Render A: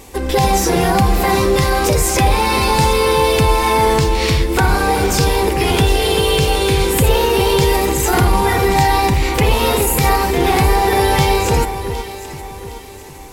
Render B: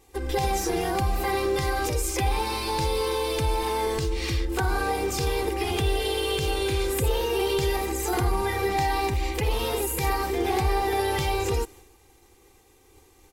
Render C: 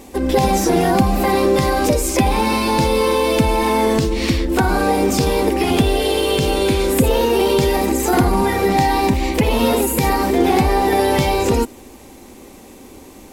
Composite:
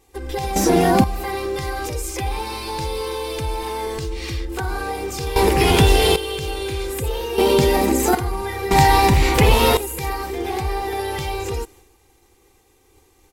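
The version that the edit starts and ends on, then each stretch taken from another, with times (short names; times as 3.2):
B
0.56–1.04 from C
5.36–6.16 from A
7.38–8.15 from C
8.71–9.77 from A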